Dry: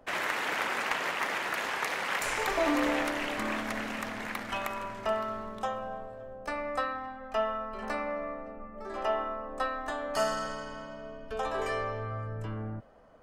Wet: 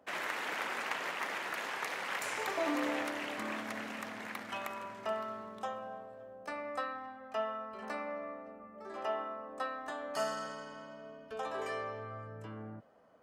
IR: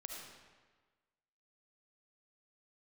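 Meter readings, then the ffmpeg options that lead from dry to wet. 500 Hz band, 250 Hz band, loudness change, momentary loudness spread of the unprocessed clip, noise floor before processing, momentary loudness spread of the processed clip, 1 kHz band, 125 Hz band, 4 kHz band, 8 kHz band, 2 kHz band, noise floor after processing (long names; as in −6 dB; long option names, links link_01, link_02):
−6.0 dB, −6.5 dB, −6.0 dB, 11 LU, −45 dBFS, 11 LU, −6.0 dB, −11.0 dB, −6.0 dB, −6.0 dB, −6.0 dB, −53 dBFS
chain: -af "highpass=140,volume=-6dB"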